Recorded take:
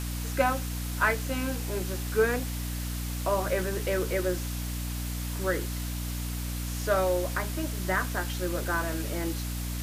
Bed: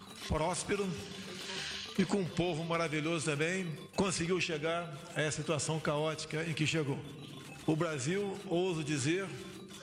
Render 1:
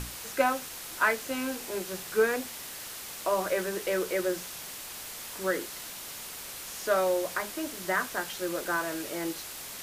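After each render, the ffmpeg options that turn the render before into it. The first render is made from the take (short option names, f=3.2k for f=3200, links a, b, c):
-af "bandreject=f=60:t=h:w=6,bandreject=f=120:t=h:w=6,bandreject=f=180:t=h:w=6,bandreject=f=240:t=h:w=6,bandreject=f=300:t=h:w=6"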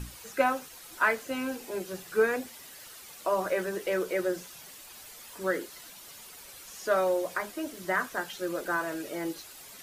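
-af "afftdn=nr=10:nf=-42"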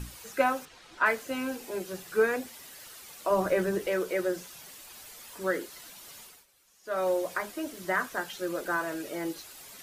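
-filter_complex "[0:a]asettb=1/sr,asplit=3[a][b][c];[a]atrim=end=0.654[d];[b]atrim=start=0.65:end=1.06,asetpts=PTS-STARTPTS,afade=t=in:d=0.004:c=qsin,afade=t=out:st=0.406:d=0.004:c=qsin,lowpass=4.3k[e];[c]atrim=start=1.056[f];[d][e]acrossfade=d=0.004:c1=hsin:c2=qsin[g];[g][f]acrossfade=d=0.004:c1=qsin:c2=hsin,asettb=1/sr,asplit=3[h][i][j];[h]atrim=end=3.304[k];[i]atrim=start=3.3:end=3.87,asetpts=PTS-STARTPTS,afade=t=in:d=0.004:c=qsin,afade=t=out:st=0.566:d=0.004:c=qsin,lowshelf=f=280:g=12[l];[j]atrim=start=3.866[m];[k][l]acrossfade=d=0.004:c1=hsin:c2=qsin[n];[n][m]acrossfade=d=0.004:c1=qsin:c2=hsin,asplit=3[o][p][q];[o]atrim=end=6.46,asetpts=PTS-STARTPTS,afade=t=out:st=6.2:d=0.26:silence=0.125893[r];[p]atrim=start=6.46:end=6.83,asetpts=PTS-STARTPTS,volume=-18dB[s];[q]atrim=start=6.83,asetpts=PTS-STARTPTS,afade=t=in:d=0.26:silence=0.125893[t];[r][s][t]concat=n=3:v=0:a=1"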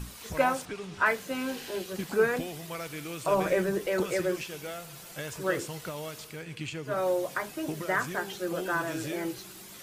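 -filter_complex "[1:a]volume=-5dB[a];[0:a][a]amix=inputs=2:normalize=0"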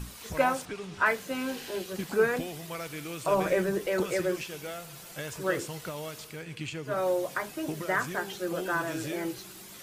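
-af anull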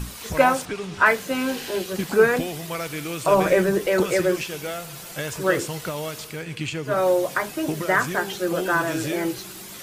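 -af "volume=8dB"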